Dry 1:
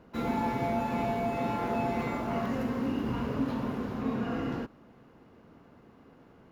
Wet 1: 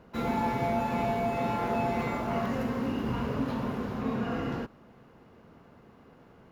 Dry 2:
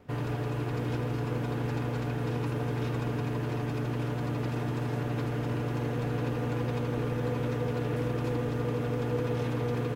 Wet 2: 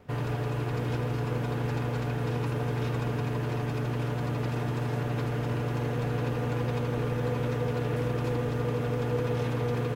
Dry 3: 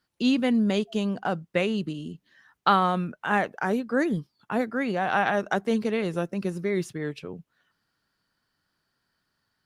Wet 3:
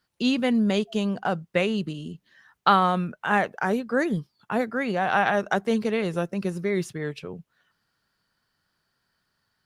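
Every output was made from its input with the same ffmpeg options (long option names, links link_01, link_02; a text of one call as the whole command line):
ffmpeg -i in.wav -af "equalizer=frequency=290:width=3:gain=-4.5,volume=2dB" out.wav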